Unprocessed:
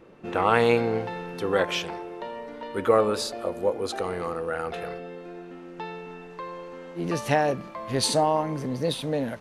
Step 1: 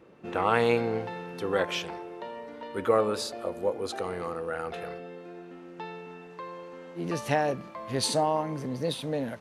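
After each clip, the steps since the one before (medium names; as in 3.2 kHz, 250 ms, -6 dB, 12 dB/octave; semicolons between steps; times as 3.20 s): high-pass 55 Hz; trim -3.5 dB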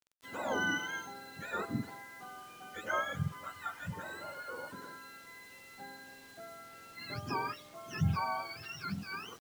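spectrum inverted on a logarithmic axis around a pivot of 840 Hz; word length cut 8-bit, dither none; trim -8 dB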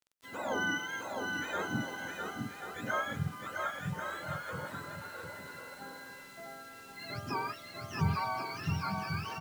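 bouncing-ball echo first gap 660 ms, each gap 0.65×, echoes 5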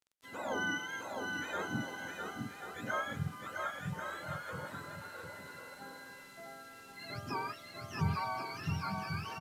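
resampled via 32 kHz; trim -2.5 dB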